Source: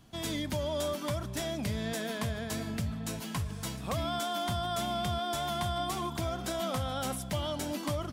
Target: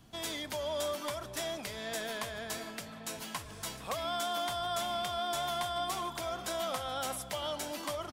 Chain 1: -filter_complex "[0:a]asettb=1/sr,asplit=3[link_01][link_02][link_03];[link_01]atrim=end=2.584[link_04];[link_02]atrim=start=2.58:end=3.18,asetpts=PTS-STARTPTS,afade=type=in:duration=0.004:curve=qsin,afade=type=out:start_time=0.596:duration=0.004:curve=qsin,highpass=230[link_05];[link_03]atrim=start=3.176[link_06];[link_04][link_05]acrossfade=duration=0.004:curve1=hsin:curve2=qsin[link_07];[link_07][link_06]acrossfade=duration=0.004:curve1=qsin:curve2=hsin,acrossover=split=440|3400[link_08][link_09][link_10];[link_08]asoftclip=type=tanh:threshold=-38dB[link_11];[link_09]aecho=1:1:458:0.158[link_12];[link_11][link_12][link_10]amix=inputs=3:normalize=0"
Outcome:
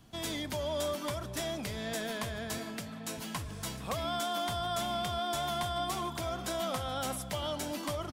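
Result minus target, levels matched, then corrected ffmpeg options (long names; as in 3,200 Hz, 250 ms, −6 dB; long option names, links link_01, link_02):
soft clipping: distortion −6 dB
-filter_complex "[0:a]asettb=1/sr,asplit=3[link_01][link_02][link_03];[link_01]atrim=end=2.584[link_04];[link_02]atrim=start=2.58:end=3.18,asetpts=PTS-STARTPTS,afade=type=in:duration=0.004:curve=qsin,afade=type=out:start_time=0.596:duration=0.004:curve=qsin,highpass=230[link_05];[link_03]atrim=start=3.176[link_06];[link_04][link_05]acrossfade=duration=0.004:curve1=hsin:curve2=qsin[link_07];[link_07][link_06]acrossfade=duration=0.004:curve1=qsin:curve2=hsin,acrossover=split=440|3400[link_08][link_09][link_10];[link_08]asoftclip=type=tanh:threshold=-49dB[link_11];[link_09]aecho=1:1:458:0.158[link_12];[link_11][link_12][link_10]amix=inputs=3:normalize=0"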